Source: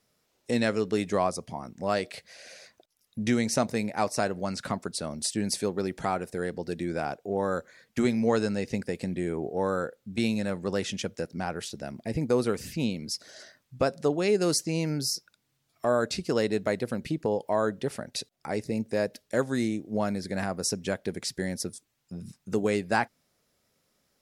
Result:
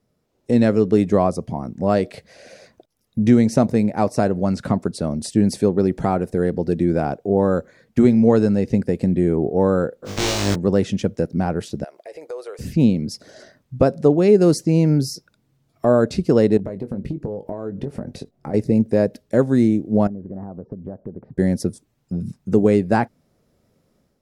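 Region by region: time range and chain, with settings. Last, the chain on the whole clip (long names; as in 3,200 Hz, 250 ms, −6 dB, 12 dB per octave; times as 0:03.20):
0:10.02–0:10.54: compressing power law on the bin magnitudes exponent 0.12 + high shelf with overshoot 8,000 Hz −12 dB, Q 1.5 + flutter between parallel walls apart 3.4 metres, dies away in 0.63 s
0:11.84–0:12.59: inverse Chebyshev high-pass filter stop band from 250 Hz + parametric band 890 Hz −4 dB 0.43 octaves + downward compressor 2.5 to 1, threshold −44 dBFS
0:16.57–0:18.54: tilt shelving filter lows +5 dB, about 1,300 Hz + downward compressor, threshold −37 dBFS + double-tracking delay 21 ms −9 dB
0:20.07–0:21.38: low-pass filter 1,100 Hz 24 dB per octave + downward compressor 3 to 1, threshold −45 dBFS + highs frequency-modulated by the lows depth 0.26 ms
whole clip: tilt shelving filter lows +8.5 dB, about 840 Hz; automatic gain control gain up to 7 dB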